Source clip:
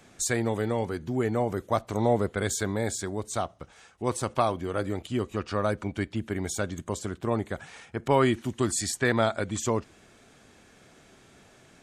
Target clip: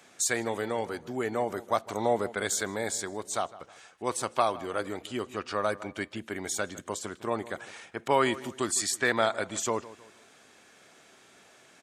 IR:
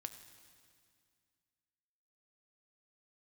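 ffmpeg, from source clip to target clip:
-filter_complex "[0:a]highpass=f=590:p=1,asplit=2[a][b];[b]adelay=157,lowpass=f=2.2k:p=1,volume=-17dB,asplit=2[c][d];[d]adelay=157,lowpass=f=2.2k:p=1,volume=0.4,asplit=2[e][f];[f]adelay=157,lowpass=f=2.2k:p=1,volume=0.4[g];[a][c][e][g]amix=inputs=4:normalize=0,volume=1.5dB"

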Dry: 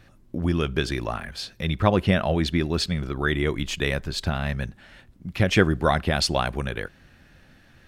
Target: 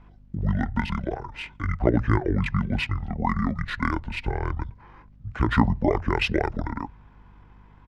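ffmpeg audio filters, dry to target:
-filter_complex "[0:a]bandreject=f=50:t=h:w=6,bandreject=f=100:t=h:w=6,bandreject=f=150:t=h:w=6,bandreject=f=200:t=h:w=6,bandreject=f=250:t=h:w=6,acrossover=split=600|1800[a][b][c];[c]adynamicsmooth=sensitivity=5:basefreq=6.8k[d];[a][b][d]amix=inputs=3:normalize=0,asetrate=25476,aresample=44100,atempo=1.73107,aeval=exprs='val(0)+0.00282*(sin(2*PI*50*n/s)+sin(2*PI*2*50*n/s)/2+sin(2*PI*3*50*n/s)/3+sin(2*PI*4*50*n/s)/4+sin(2*PI*5*50*n/s)/5)':c=same"

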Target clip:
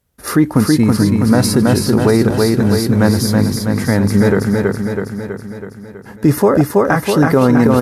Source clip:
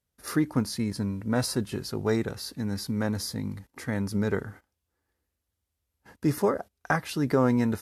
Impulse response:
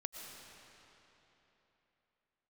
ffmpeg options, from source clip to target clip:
-af "equalizer=f=4.8k:w=0.42:g=-5,aecho=1:1:325|650|975|1300|1625|1950|2275|2600:0.631|0.372|0.22|0.13|0.0765|0.0451|0.0266|0.0157,alimiter=level_in=17dB:limit=-1dB:release=50:level=0:latency=1,volume=-1dB"

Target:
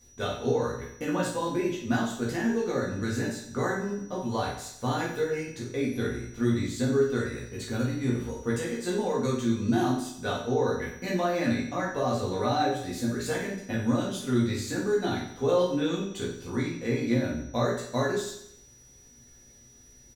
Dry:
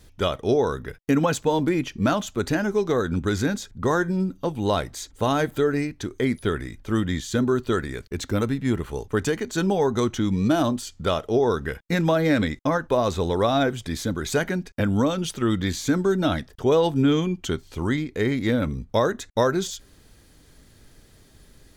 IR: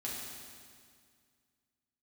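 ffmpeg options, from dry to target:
-filter_complex "[0:a]aeval=exprs='val(0)+0.00316*sin(2*PI*5400*n/s)':c=same,asetrate=47628,aresample=44100,asplit=2[a][b];[b]adelay=17,volume=-3dB[c];[a][c]amix=inputs=2:normalize=0,aecho=1:1:90|180|270|360|450:0.335|0.144|0.0619|0.0266|0.0115[d];[1:a]atrim=start_sample=2205,atrim=end_sample=3087[e];[d][e]afir=irnorm=-1:irlink=0,volume=-7dB"

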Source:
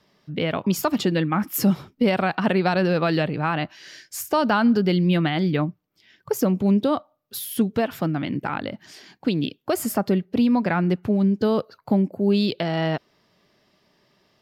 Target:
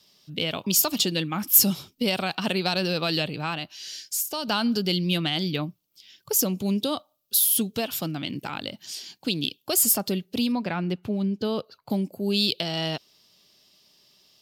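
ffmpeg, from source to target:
-filter_complex "[0:a]aexciter=amount=4.1:drive=8.1:freq=2.7k,asettb=1/sr,asplit=3[a][b][c];[a]atrim=end=3.544[d];[b]atrim=start=3.54:end=4.48,asetpts=PTS-STARTPTS,afade=t=in:d=0.004:c=qsin,afade=t=out:st=0.936:d=0.004:c=qsin,acompressor=threshold=-30dB:ratio=1.5[e];[c]atrim=start=4.476[f];[d][e]acrossfade=d=0.004:c1=hsin:c2=qsin[g];[g][f]acrossfade=d=0.004:c1=qsin:c2=hsin,asettb=1/sr,asplit=3[h][i][j];[h]atrim=end=10.524[k];[i]atrim=start=10.52:end=11.9,asetpts=PTS-STARTPTS,afade=t=in:d=0.004:c=qsin,afade=t=out:st=1.376:d=0.004:c=qsin,bass=f=250:g=0,treble=f=4k:g=-13[l];[j]atrim=start=11.896[m];[k][l]acrossfade=d=0.004:c1=hsin:c2=qsin[n];[n][m]acrossfade=d=0.004:c1=qsin:c2=hsin,volume=-6.5dB"

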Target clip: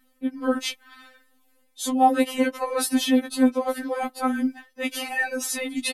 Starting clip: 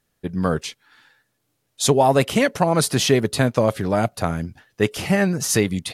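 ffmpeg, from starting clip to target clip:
-af "aecho=1:1:3.8:0.39,areverse,acompressor=threshold=-27dB:ratio=5,areverse,afftfilt=real='re*3.46*eq(mod(b,12),0)':imag='im*3.46*eq(mod(b,12),0)':win_size=2048:overlap=0.75,volume=7dB"

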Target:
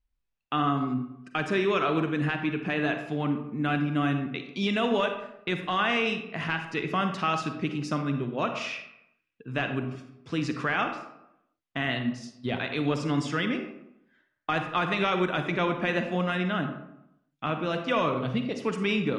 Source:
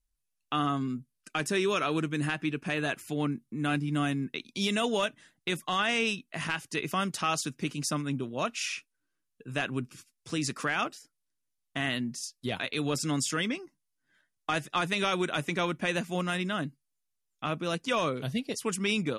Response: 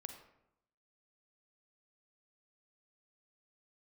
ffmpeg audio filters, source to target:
-filter_complex "[0:a]lowpass=3k[a];[1:a]atrim=start_sample=2205[b];[a][b]afir=irnorm=-1:irlink=0,volume=7.5dB"

